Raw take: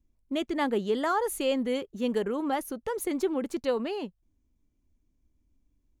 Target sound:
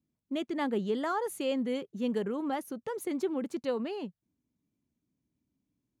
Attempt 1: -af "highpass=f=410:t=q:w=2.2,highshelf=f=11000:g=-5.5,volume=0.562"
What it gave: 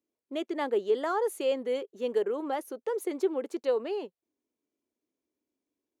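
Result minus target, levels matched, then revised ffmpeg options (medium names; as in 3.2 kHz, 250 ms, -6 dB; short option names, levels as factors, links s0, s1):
125 Hz band -18.0 dB
-af "highpass=f=150:t=q:w=2.2,highshelf=f=11000:g=-5.5,volume=0.562"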